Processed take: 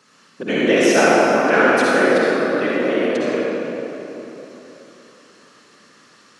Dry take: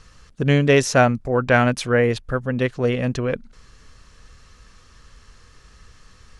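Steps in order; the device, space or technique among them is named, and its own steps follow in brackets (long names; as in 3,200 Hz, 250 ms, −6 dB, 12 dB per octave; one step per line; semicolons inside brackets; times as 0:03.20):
whispering ghost (random phases in short frames; high-pass filter 230 Hz 24 dB per octave; convolution reverb RT60 3.4 s, pre-delay 49 ms, DRR −6 dB)
level −2.5 dB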